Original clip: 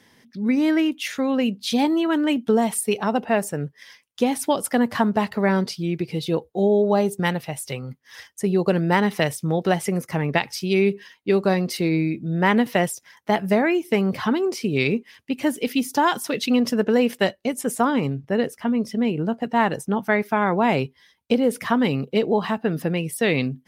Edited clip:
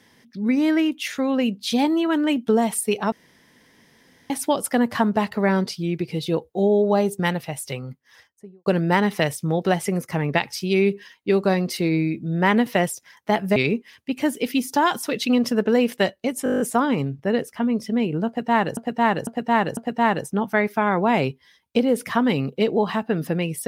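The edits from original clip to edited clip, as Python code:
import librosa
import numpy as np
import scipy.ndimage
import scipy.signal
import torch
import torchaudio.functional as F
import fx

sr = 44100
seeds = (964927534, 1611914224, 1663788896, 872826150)

y = fx.studio_fade_out(x, sr, start_s=7.72, length_s=0.94)
y = fx.edit(y, sr, fx.room_tone_fill(start_s=3.12, length_s=1.18),
    fx.cut(start_s=13.56, length_s=1.21),
    fx.stutter(start_s=17.65, slice_s=0.02, count=9),
    fx.repeat(start_s=19.32, length_s=0.5, count=4), tone=tone)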